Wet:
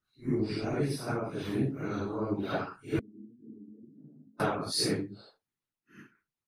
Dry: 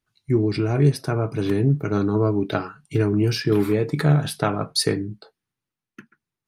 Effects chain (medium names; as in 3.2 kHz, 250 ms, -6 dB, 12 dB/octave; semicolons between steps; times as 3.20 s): phase randomisation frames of 200 ms; 2.99–4.40 s: Butterworth band-pass 240 Hz, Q 5.4; harmonic-percussive split harmonic -14 dB; trim -2 dB